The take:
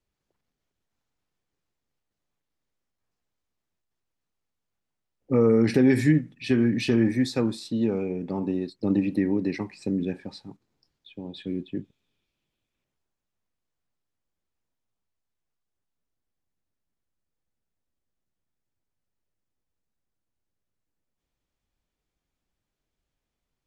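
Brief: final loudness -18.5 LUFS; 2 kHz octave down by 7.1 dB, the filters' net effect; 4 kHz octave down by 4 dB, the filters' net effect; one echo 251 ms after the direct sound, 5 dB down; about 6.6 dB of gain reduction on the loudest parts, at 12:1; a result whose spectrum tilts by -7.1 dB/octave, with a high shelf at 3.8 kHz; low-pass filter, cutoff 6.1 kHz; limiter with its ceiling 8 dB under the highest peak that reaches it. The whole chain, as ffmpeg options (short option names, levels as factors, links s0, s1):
-af "lowpass=6100,equalizer=f=2000:t=o:g=-8.5,highshelf=f=3800:g=3,equalizer=f=4000:t=o:g=-3.5,acompressor=threshold=0.0891:ratio=12,alimiter=limit=0.0841:level=0:latency=1,aecho=1:1:251:0.562,volume=4.22"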